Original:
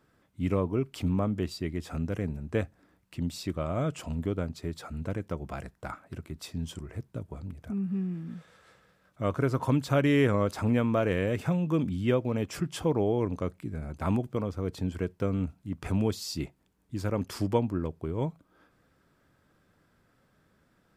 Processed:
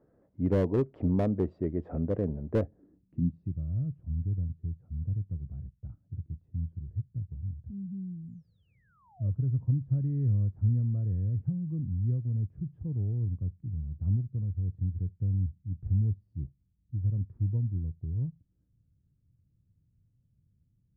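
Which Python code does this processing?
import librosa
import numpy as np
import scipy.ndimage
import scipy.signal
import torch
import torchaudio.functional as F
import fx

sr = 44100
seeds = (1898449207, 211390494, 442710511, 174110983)

y = fx.peak_eq(x, sr, hz=1800.0, db=7.5, octaves=0.47)
y = fx.spec_paint(y, sr, seeds[0], shape='fall', start_s=8.19, length_s=1.11, low_hz=520.0, high_hz=10000.0, level_db=-25.0)
y = fx.filter_sweep_lowpass(y, sr, from_hz=560.0, to_hz=110.0, start_s=2.57, end_s=3.62, q=1.9)
y = fx.slew_limit(y, sr, full_power_hz=30.0)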